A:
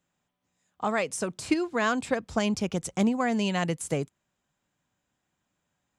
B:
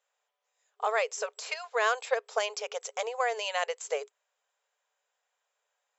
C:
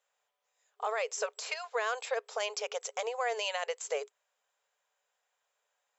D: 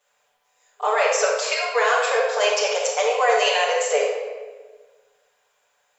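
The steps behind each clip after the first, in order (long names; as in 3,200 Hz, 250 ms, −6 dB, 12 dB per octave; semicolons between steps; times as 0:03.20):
brick-wall band-pass 410–7,700 Hz
brickwall limiter −22.5 dBFS, peak gain reduction 8.5 dB
convolution reverb RT60 1.4 s, pre-delay 7 ms, DRR −7.5 dB; level +6.5 dB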